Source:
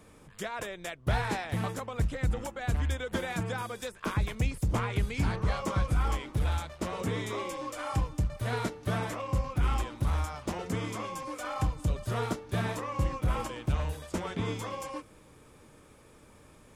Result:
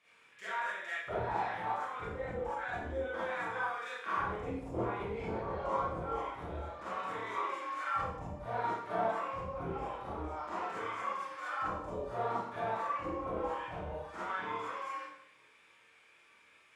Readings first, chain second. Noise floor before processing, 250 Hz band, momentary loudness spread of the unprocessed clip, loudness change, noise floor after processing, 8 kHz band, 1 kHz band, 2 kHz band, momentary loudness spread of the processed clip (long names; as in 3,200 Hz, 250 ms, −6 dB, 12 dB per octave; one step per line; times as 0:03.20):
−56 dBFS, −8.5 dB, 7 LU, −4.5 dB, −64 dBFS, below −15 dB, +1.5 dB, −1.0 dB, 6 LU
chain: multi-voice chorus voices 4, 0.35 Hz, delay 25 ms, depth 1.6 ms
envelope filter 380–2,500 Hz, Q 2.1, down, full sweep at −24 dBFS
four-comb reverb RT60 0.68 s, combs from 33 ms, DRR −8 dB